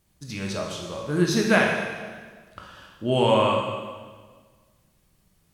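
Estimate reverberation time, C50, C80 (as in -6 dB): 1.6 s, 2.5 dB, 4.5 dB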